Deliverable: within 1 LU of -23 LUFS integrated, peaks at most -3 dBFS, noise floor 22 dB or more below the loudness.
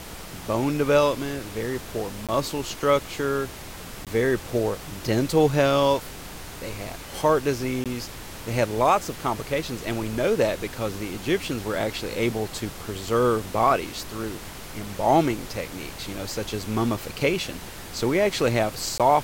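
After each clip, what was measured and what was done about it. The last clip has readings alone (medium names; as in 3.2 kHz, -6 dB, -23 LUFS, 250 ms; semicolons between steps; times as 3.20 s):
dropouts 4; longest dropout 17 ms; noise floor -39 dBFS; noise floor target -47 dBFS; loudness -25.0 LUFS; peak level -8.0 dBFS; loudness target -23.0 LUFS
-> interpolate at 2.27/4.05/7.84/18.98 s, 17 ms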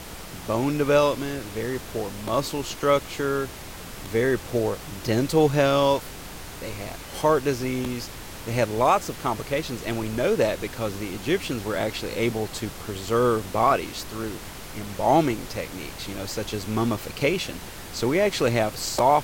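dropouts 0; noise floor -39 dBFS; noise floor target -47 dBFS
-> noise print and reduce 8 dB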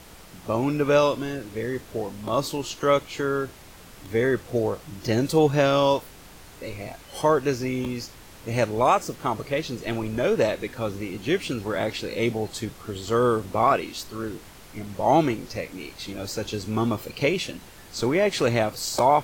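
noise floor -46 dBFS; noise floor target -47 dBFS
-> noise print and reduce 6 dB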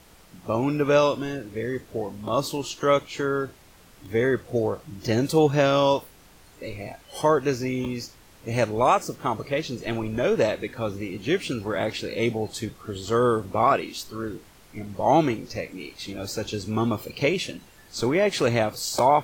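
noise floor -52 dBFS; loudness -25.0 LUFS; peak level -8.0 dBFS; loudness target -23.0 LUFS
-> trim +2 dB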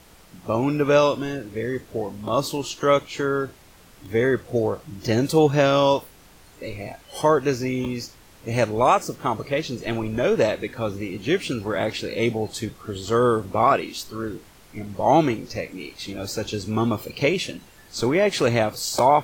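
loudness -23.0 LUFS; peak level -6.0 dBFS; noise floor -50 dBFS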